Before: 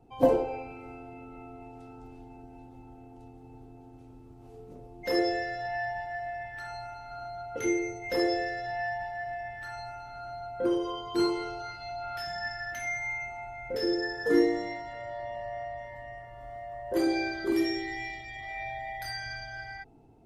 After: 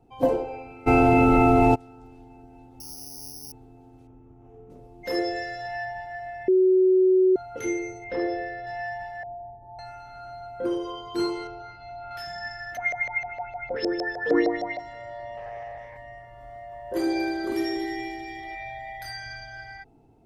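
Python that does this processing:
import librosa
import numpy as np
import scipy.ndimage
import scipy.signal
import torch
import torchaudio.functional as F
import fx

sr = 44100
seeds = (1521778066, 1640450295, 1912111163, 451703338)

y = fx.env_flatten(x, sr, amount_pct=100, at=(0.86, 1.74), fade=0.02)
y = fx.resample_bad(y, sr, factor=8, down='filtered', up='zero_stuff', at=(2.8, 3.52))
y = fx.moving_average(y, sr, points=10, at=(4.07, 4.7))
y = fx.high_shelf(y, sr, hz=3700.0, db=6.5, at=(5.36, 5.84))
y = fx.gaussian_blur(y, sr, sigma=2.3, at=(8.04, 8.67))
y = fx.ellip_lowpass(y, sr, hz=890.0, order=4, stop_db=40, at=(9.23, 9.79))
y = fx.spacing_loss(y, sr, db_at_10k=22, at=(11.47, 12.11))
y = fx.filter_lfo_lowpass(y, sr, shape='saw_up', hz=6.5, low_hz=570.0, high_hz=4900.0, q=5.3, at=(12.76, 14.78), fade=0.02)
y = fx.doppler_dist(y, sr, depth_ms=0.24, at=(15.37, 15.97))
y = fx.echo_heads(y, sr, ms=79, heads='first and third', feedback_pct=62, wet_db=-12.5, at=(16.71, 18.54), fade=0.02)
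y = fx.edit(y, sr, fx.bleep(start_s=6.48, length_s=0.88, hz=373.0, db=-15.0), tone=tone)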